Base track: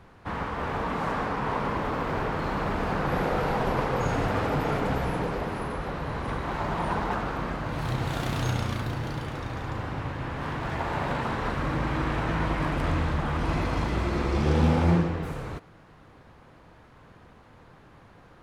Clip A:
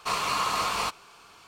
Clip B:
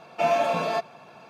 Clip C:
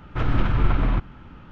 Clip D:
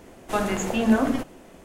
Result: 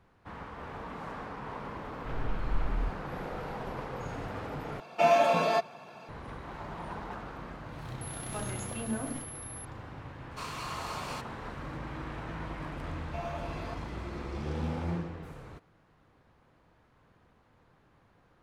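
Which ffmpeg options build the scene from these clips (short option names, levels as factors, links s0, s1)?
-filter_complex "[2:a]asplit=2[s0][s1];[0:a]volume=0.251[s2];[3:a]asubboost=boost=9.5:cutoff=58[s3];[4:a]aeval=exprs='val(0)+0.0447*sin(2*PI*11000*n/s)':c=same[s4];[s2]asplit=2[s5][s6];[s5]atrim=end=4.804[s7];[s0]atrim=end=1.29,asetpts=PTS-STARTPTS,volume=0.944[s8];[s6]atrim=start=6.086[s9];[s3]atrim=end=1.51,asetpts=PTS-STARTPTS,volume=0.141,afade=t=in:d=0.004:c=hsin,afade=t=out:st=1.506:d=0.004:c=hsin,adelay=1900[s10];[s4]atrim=end=1.64,asetpts=PTS-STARTPTS,volume=0.168,afade=t=in:d=0.004:c=hsin,afade=t=out:st=1.636:d=0.004:c=hsin,adelay=8010[s11];[1:a]atrim=end=1.47,asetpts=PTS-STARTPTS,volume=0.237,afade=t=in:d=0.004:c=hsin,afade=t=out:st=1.466:d=0.004:c=hsin,adelay=10310[s12];[s1]atrim=end=1.29,asetpts=PTS-STARTPTS,volume=0.133,afade=t=in:d=0.004:c=hsin,afade=t=out:st=1.286:d=0.004:c=hsin,adelay=12940[s13];[s7][s8]acrossfade=d=0.004:c1=hsin:c2=hsin[s14];[s14][s9]acrossfade=d=0.004:c1=hsin:c2=hsin[s15];[s15][s10][s11][s12][s13]amix=inputs=5:normalize=0"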